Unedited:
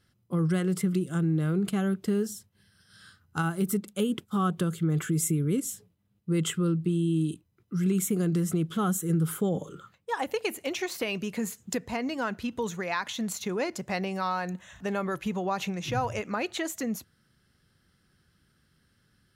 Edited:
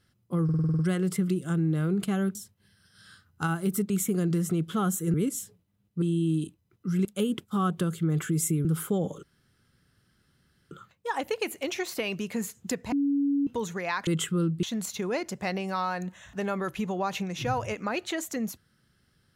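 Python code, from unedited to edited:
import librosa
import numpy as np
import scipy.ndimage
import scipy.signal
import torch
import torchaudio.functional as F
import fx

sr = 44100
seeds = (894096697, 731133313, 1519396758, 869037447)

y = fx.edit(x, sr, fx.stutter(start_s=0.44, slice_s=0.05, count=8),
    fx.cut(start_s=2.0, length_s=0.3),
    fx.swap(start_s=3.85, length_s=1.6, other_s=7.92, other_length_s=1.24),
    fx.move(start_s=6.33, length_s=0.56, to_s=13.1),
    fx.insert_room_tone(at_s=9.74, length_s=1.48),
    fx.bleep(start_s=11.95, length_s=0.55, hz=282.0, db=-22.0), tone=tone)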